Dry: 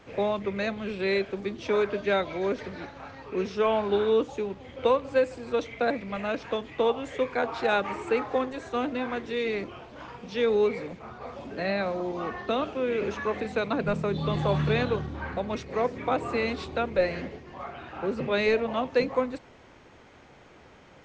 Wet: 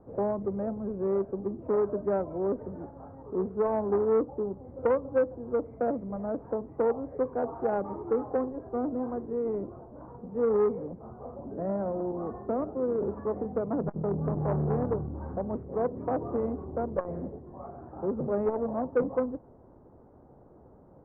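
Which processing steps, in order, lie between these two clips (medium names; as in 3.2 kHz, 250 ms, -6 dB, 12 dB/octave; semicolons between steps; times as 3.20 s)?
Bessel low-pass 630 Hz, order 6; transformer saturation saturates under 530 Hz; trim +1 dB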